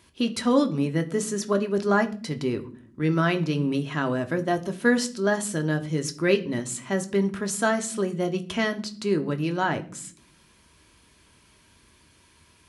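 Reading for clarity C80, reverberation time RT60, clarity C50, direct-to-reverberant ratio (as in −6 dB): 21.0 dB, non-exponential decay, 17.0 dB, 6.0 dB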